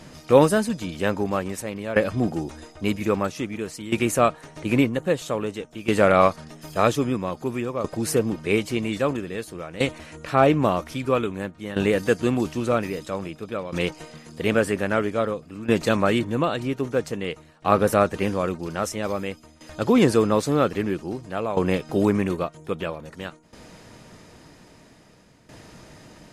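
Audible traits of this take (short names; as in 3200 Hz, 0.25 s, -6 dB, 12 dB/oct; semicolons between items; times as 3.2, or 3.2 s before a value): tremolo saw down 0.51 Hz, depth 80%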